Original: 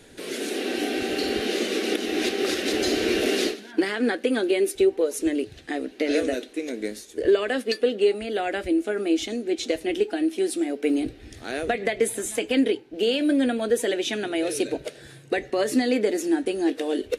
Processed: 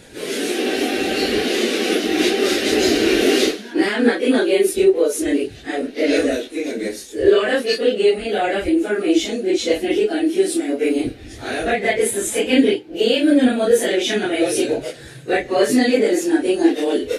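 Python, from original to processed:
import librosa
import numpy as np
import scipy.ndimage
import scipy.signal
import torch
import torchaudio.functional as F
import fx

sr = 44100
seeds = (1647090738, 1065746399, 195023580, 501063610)

y = fx.phase_scramble(x, sr, seeds[0], window_ms=100)
y = F.gain(torch.from_numpy(y), 7.0).numpy()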